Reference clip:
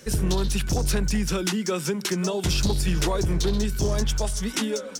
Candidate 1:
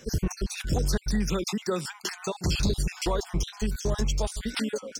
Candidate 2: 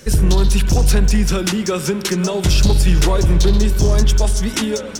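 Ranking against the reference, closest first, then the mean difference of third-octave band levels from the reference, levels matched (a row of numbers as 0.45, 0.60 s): 2, 1; 2.0, 6.0 dB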